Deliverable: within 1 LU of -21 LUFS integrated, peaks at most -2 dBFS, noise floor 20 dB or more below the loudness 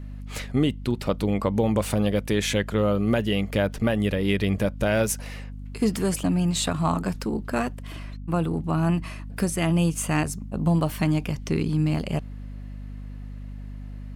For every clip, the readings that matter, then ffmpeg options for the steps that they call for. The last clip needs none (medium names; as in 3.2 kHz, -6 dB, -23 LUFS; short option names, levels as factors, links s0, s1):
hum 50 Hz; highest harmonic 250 Hz; hum level -34 dBFS; loudness -25.0 LUFS; peak level -11.0 dBFS; loudness target -21.0 LUFS
-> -af "bandreject=f=50:t=h:w=4,bandreject=f=100:t=h:w=4,bandreject=f=150:t=h:w=4,bandreject=f=200:t=h:w=4,bandreject=f=250:t=h:w=4"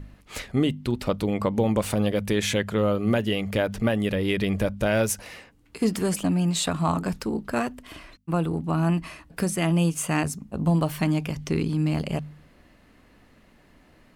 hum not found; loudness -25.5 LUFS; peak level -10.5 dBFS; loudness target -21.0 LUFS
-> -af "volume=1.68"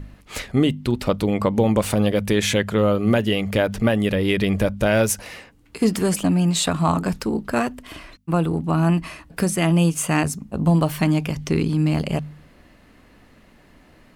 loudness -21.0 LUFS; peak level -6.0 dBFS; noise floor -52 dBFS